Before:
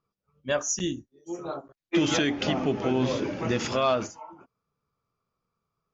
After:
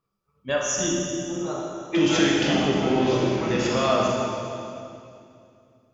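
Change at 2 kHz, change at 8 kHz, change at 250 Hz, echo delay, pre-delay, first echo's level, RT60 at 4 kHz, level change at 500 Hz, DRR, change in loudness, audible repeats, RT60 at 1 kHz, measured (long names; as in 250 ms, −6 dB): +4.5 dB, can't be measured, +5.0 dB, no echo audible, 22 ms, no echo audible, 2.3 s, +4.5 dB, −3.0 dB, +4.0 dB, no echo audible, 2.4 s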